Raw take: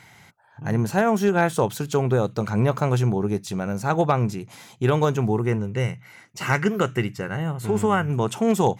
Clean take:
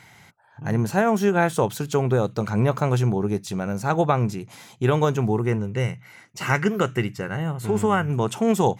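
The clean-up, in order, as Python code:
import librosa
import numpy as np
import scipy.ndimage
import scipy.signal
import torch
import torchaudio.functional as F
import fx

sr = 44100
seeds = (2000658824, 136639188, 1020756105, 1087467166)

y = fx.fix_declip(x, sr, threshold_db=-9.5)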